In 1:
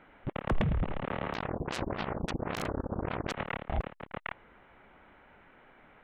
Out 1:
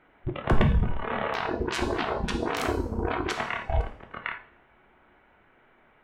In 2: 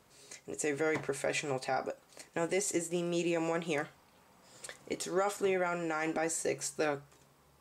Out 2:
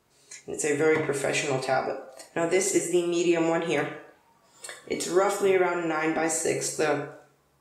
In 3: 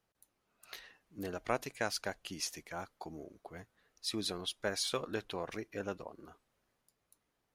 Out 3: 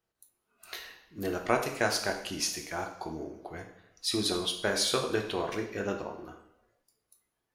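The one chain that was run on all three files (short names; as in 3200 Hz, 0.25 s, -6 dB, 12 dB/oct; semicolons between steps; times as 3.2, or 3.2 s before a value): two-slope reverb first 0.7 s, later 2 s, from -23 dB, DRR 2.5 dB; spectral noise reduction 10 dB; gain +6 dB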